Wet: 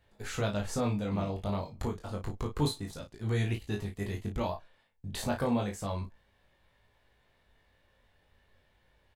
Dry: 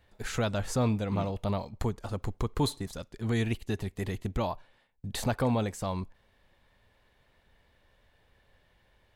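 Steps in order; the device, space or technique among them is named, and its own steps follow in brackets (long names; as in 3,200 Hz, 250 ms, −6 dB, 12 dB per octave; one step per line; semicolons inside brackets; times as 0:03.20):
double-tracked vocal (double-tracking delay 34 ms −7 dB; chorus effect 0.3 Hz, delay 19 ms, depth 2.2 ms)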